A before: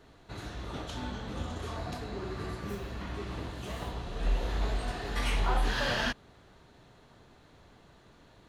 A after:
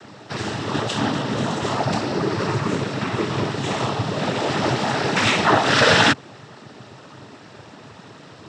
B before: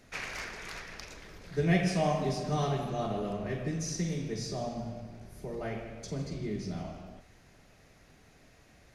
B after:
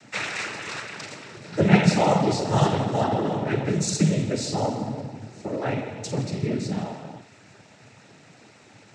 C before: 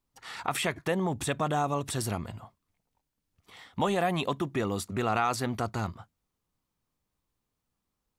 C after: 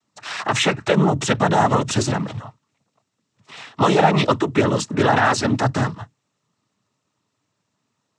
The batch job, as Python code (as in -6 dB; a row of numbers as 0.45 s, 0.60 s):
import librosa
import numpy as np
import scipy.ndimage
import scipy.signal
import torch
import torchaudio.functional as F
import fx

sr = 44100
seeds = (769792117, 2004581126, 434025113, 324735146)

y = fx.fold_sine(x, sr, drive_db=3, ceiling_db=-12.0)
y = fx.noise_vocoder(y, sr, seeds[0], bands=12)
y = y * 10.0 ** (-2 / 20.0) / np.max(np.abs(y))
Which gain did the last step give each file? +10.0 dB, +3.5 dB, +6.0 dB